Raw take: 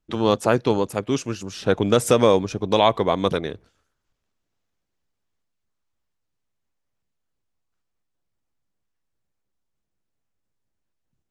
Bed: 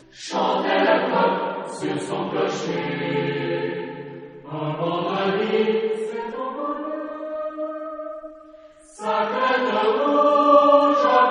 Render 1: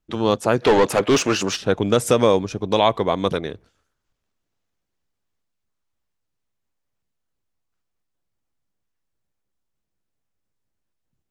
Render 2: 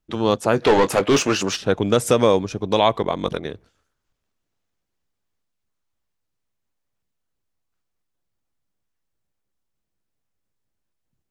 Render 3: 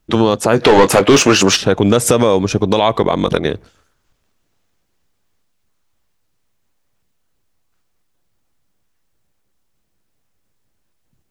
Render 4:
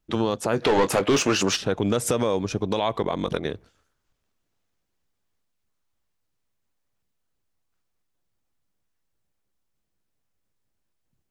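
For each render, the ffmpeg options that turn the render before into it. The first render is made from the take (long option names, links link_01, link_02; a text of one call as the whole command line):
ffmpeg -i in.wav -filter_complex "[0:a]asplit=3[link_01][link_02][link_03];[link_01]afade=type=out:start_time=0.61:duration=0.02[link_04];[link_02]asplit=2[link_05][link_06];[link_06]highpass=frequency=720:poles=1,volume=26dB,asoftclip=type=tanh:threshold=-6.5dB[link_07];[link_05][link_07]amix=inputs=2:normalize=0,lowpass=frequency=3000:poles=1,volume=-6dB,afade=type=in:start_time=0.61:duration=0.02,afade=type=out:start_time=1.55:duration=0.02[link_08];[link_03]afade=type=in:start_time=1.55:duration=0.02[link_09];[link_04][link_08][link_09]amix=inputs=3:normalize=0" out.wav
ffmpeg -i in.wav -filter_complex "[0:a]asettb=1/sr,asplit=3[link_01][link_02][link_03];[link_01]atrim=end=0.514[link_04];[link_02]atrim=start=0.51:end=1.3,asetpts=PTS-STARTPTS,afade=type=in:duration=0.004:curve=qsin,afade=type=out:start_time=0.786:duration=0.004:curve=qsin,asplit=2[link_05][link_06];[link_06]adelay=21,volume=-12dB[link_07];[link_05][link_07]amix=inputs=2:normalize=0,atrim=end_sample=34839[link_08];[link_03]atrim=start=1.296[link_09];[link_04][link_08]acrossfade=duration=0.004:curve1=hsin:curve2=qsin[link_10];[link_10][link_09]acrossfade=duration=0.004:curve1=qsin:curve2=hsin,asettb=1/sr,asplit=3[link_11][link_12][link_13];[link_11]atrim=end=3.014[link_14];[link_12]atrim=start=3.01:end=3.45,asetpts=PTS-STARTPTS,afade=type=in:duration=0.004:curve=qsin,afade=type=out:start_time=0.436:duration=0.004:curve=qsin,aeval=exprs='val(0)*sin(2*PI*23*n/s)':channel_layout=same[link_15];[link_13]atrim=start=3.446[link_16];[link_14][link_15]acrossfade=duration=0.004:curve1=hsin:curve2=qsin[link_17];[link_17][link_16]acrossfade=duration=0.004:curve1=qsin:curve2=hsin" out.wav
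ffmpeg -i in.wav -af "acompressor=threshold=-17dB:ratio=6,alimiter=level_in=12.5dB:limit=-1dB:release=50:level=0:latency=1" out.wav
ffmpeg -i in.wav -af "volume=-11dB" out.wav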